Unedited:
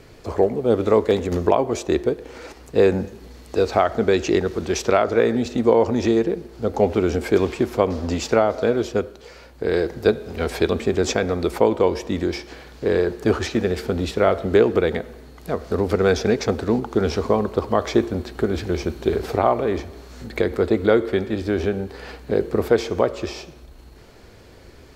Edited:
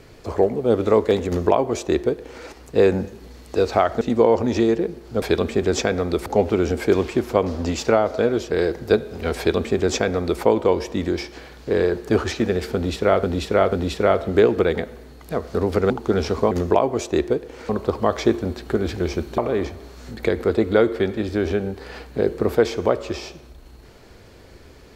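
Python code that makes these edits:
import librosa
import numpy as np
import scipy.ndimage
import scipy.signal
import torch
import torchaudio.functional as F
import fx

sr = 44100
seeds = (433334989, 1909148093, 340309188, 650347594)

y = fx.edit(x, sr, fx.duplicate(start_s=1.27, length_s=1.18, to_s=17.38),
    fx.cut(start_s=4.01, length_s=1.48),
    fx.cut(start_s=8.95, length_s=0.71),
    fx.duplicate(start_s=10.53, length_s=1.04, to_s=6.7),
    fx.repeat(start_s=13.89, length_s=0.49, count=3),
    fx.cut(start_s=16.07, length_s=0.7),
    fx.cut(start_s=19.07, length_s=0.44), tone=tone)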